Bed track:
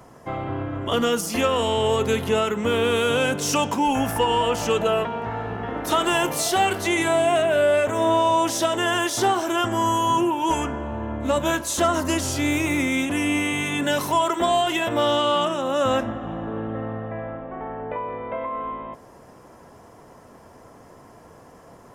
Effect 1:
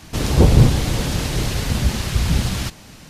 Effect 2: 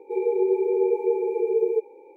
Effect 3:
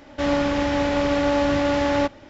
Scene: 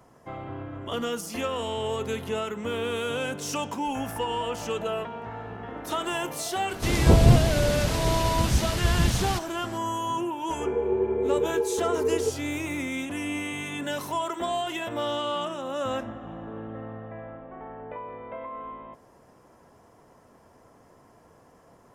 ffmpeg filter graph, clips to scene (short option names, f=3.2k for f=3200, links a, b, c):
-filter_complex "[0:a]volume=-8.5dB[a];[2:a]aresample=8000,aresample=44100[b];[1:a]atrim=end=3.09,asetpts=PTS-STARTPTS,volume=-4.5dB,afade=t=in:d=0.004:c=hsin,afade=t=out:st=3.086:d=0.004:c=hsin,adelay=6690[c];[b]atrim=end=2.16,asetpts=PTS-STARTPTS,volume=-3.5dB,afade=t=in:d=0.004:c=hsin,afade=t=out:st=2.156:d=0.004:c=hsin,adelay=463050S[d];[a][c][d]amix=inputs=3:normalize=0"